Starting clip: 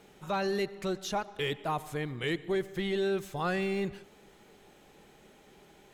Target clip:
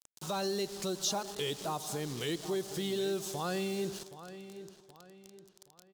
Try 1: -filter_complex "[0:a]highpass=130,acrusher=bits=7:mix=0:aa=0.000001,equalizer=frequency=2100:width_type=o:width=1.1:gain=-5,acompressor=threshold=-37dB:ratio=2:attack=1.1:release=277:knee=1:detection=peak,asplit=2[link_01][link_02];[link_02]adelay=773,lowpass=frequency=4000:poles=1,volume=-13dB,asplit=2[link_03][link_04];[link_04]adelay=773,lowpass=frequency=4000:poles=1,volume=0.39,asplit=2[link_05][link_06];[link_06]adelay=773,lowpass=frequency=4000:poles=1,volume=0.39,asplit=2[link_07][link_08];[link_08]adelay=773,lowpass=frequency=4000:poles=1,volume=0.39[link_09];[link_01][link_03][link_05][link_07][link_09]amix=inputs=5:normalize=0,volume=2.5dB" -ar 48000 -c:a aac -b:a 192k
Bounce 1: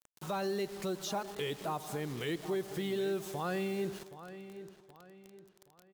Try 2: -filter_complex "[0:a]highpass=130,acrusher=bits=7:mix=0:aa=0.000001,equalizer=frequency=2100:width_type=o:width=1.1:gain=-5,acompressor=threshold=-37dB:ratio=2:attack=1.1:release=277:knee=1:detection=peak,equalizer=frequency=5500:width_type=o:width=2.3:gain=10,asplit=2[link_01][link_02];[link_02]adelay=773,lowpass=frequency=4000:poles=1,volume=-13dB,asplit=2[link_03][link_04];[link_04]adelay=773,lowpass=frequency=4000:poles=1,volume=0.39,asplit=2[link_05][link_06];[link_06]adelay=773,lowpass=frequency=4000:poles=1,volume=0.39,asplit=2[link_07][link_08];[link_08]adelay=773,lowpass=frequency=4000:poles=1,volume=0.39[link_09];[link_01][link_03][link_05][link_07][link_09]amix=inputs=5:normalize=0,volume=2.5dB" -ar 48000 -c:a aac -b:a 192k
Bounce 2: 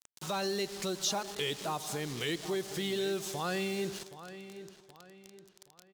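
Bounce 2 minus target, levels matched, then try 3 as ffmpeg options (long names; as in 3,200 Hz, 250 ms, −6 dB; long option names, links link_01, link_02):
2,000 Hz band +4.0 dB
-filter_complex "[0:a]highpass=130,acrusher=bits=7:mix=0:aa=0.000001,equalizer=frequency=2100:width_type=o:width=1.1:gain=-12,acompressor=threshold=-37dB:ratio=2:attack=1.1:release=277:knee=1:detection=peak,equalizer=frequency=5500:width_type=o:width=2.3:gain=10,asplit=2[link_01][link_02];[link_02]adelay=773,lowpass=frequency=4000:poles=1,volume=-13dB,asplit=2[link_03][link_04];[link_04]adelay=773,lowpass=frequency=4000:poles=1,volume=0.39,asplit=2[link_05][link_06];[link_06]adelay=773,lowpass=frequency=4000:poles=1,volume=0.39,asplit=2[link_07][link_08];[link_08]adelay=773,lowpass=frequency=4000:poles=1,volume=0.39[link_09];[link_01][link_03][link_05][link_07][link_09]amix=inputs=5:normalize=0,volume=2.5dB" -ar 48000 -c:a aac -b:a 192k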